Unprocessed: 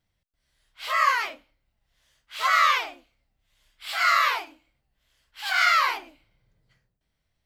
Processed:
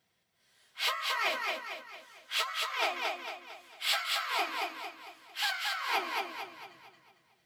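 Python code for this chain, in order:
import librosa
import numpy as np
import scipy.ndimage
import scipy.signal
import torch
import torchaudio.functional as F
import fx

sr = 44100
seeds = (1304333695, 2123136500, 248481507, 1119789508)

p1 = scipy.signal.sosfilt(scipy.signal.butter(2, 230.0, 'highpass', fs=sr, output='sos'), x)
p2 = fx.over_compress(p1, sr, threshold_db=-33.0, ratio=-1.0)
p3 = fx.notch_comb(p2, sr, f0_hz=290.0)
p4 = p3 + fx.echo_feedback(p3, sr, ms=226, feedback_pct=44, wet_db=-3, dry=0)
y = p4 * librosa.db_to_amplitude(-1.0)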